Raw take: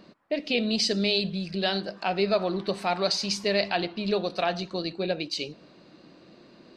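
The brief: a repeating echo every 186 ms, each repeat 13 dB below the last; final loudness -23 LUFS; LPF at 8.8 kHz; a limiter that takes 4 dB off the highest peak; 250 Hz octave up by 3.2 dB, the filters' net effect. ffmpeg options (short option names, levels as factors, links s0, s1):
-af "lowpass=8800,equalizer=f=250:t=o:g=4.5,alimiter=limit=0.178:level=0:latency=1,aecho=1:1:186|372|558:0.224|0.0493|0.0108,volume=1.58"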